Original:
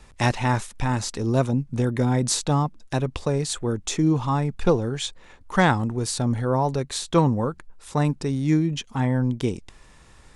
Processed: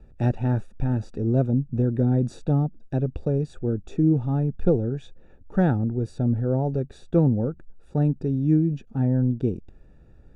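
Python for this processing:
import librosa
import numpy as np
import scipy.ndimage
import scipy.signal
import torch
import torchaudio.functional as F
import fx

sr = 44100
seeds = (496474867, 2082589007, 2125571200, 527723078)

y = np.convolve(x, np.full(42, 1.0 / 42))[:len(x)]
y = y * 10.0 ** (1.5 / 20.0)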